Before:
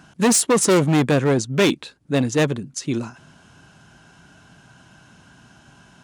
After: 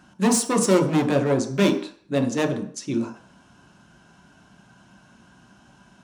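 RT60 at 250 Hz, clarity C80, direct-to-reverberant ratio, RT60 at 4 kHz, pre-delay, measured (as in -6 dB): 0.45 s, 13.5 dB, 2.0 dB, 0.50 s, 3 ms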